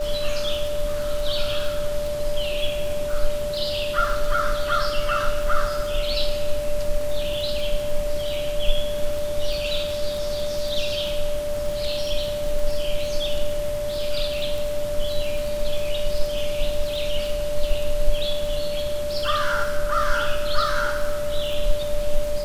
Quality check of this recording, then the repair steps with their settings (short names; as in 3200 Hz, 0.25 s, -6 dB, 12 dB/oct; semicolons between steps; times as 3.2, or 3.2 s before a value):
crackle 32/s -28 dBFS
tone 590 Hz -25 dBFS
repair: de-click; notch 590 Hz, Q 30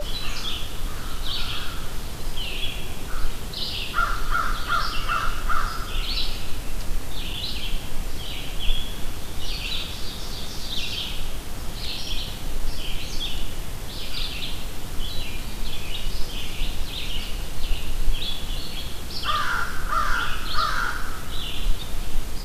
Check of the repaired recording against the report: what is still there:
none